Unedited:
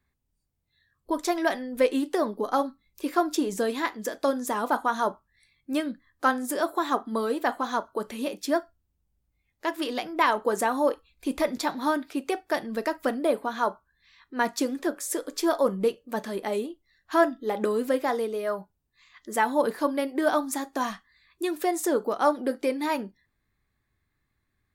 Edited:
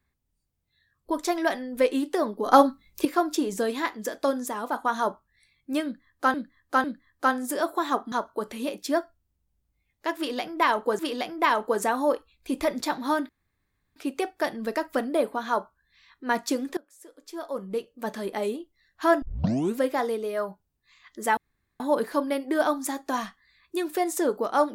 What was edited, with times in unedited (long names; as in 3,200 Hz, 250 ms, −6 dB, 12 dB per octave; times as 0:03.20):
0:02.46–0:03.05: clip gain +9 dB
0:04.48–0:04.85: clip gain −4 dB
0:05.84–0:06.34: repeat, 3 plays
0:07.12–0:07.71: remove
0:09.76–0:10.58: repeat, 2 plays
0:12.06: splice in room tone 0.67 s
0:14.87–0:16.27: fade in quadratic, from −23.5 dB
0:17.32: tape start 0.55 s
0:19.47: splice in room tone 0.43 s